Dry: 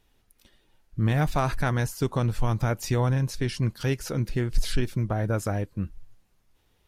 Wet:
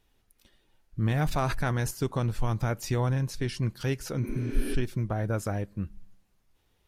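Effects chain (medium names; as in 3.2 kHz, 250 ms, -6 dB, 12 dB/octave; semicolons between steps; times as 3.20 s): on a send at -22 dB: reverberation RT60 0.65 s, pre-delay 3 ms; 1.11–1.91 s: on the sum: transient shaper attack -1 dB, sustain +6 dB; 4.26–4.72 s: spectral replace 200–8600 Hz both; trim -3 dB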